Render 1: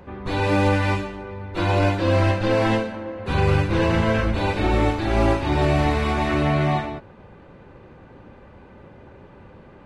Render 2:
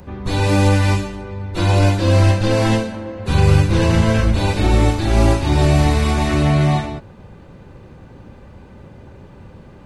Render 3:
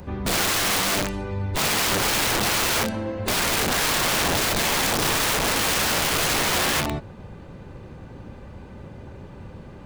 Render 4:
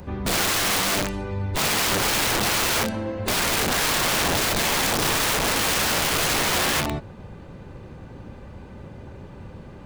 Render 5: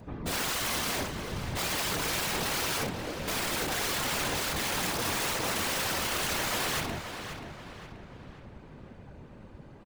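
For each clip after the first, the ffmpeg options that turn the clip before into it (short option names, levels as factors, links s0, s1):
-filter_complex "[0:a]bass=f=250:g=8,treble=f=4000:g=14,acrossover=split=840[s0][s1];[s0]crystalizer=i=8:c=0[s2];[s2][s1]amix=inputs=2:normalize=0"
-af "aeval=exprs='(mod(7.5*val(0)+1,2)-1)/7.5':c=same"
-af anull
-filter_complex "[0:a]afftfilt=real='hypot(re,im)*cos(2*PI*random(0))':imag='hypot(re,im)*sin(2*PI*random(1))':win_size=512:overlap=0.75,asplit=2[s0][s1];[s1]adelay=531,lowpass=f=4200:p=1,volume=0.398,asplit=2[s2][s3];[s3]adelay=531,lowpass=f=4200:p=1,volume=0.46,asplit=2[s4][s5];[s5]adelay=531,lowpass=f=4200:p=1,volume=0.46,asplit=2[s6][s7];[s7]adelay=531,lowpass=f=4200:p=1,volume=0.46,asplit=2[s8][s9];[s9]adelay=531,lowpass=f=4200:p=1,volume=0.46[s10];[s0][s2][s4][s6][s8][s10]amix=inputs=6:normalize=0,volume=0.708"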